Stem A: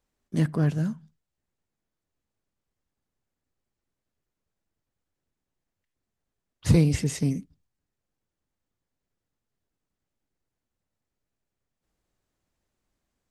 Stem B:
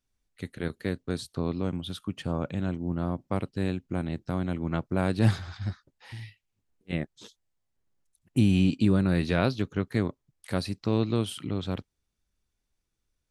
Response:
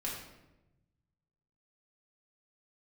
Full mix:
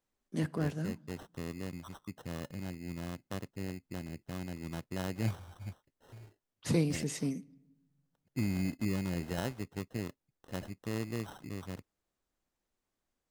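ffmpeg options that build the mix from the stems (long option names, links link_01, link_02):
-filter_complex "[0:a]highpass=200,volume=-6dB,asplit=2[link_01][link_02];[link_02]volume=-22.5dB[link_03];[1:a]acrusher=samples=19:mix=1:aa=0.000001,volume=-11dB[link_04];[2:a]atrim=start_sample=2205[link_05];[link_03][link_05]afir=irnorm=-1:irlink=0[link_06];[link_01][link_04][link_06]amix=inputs=3:normalize=0"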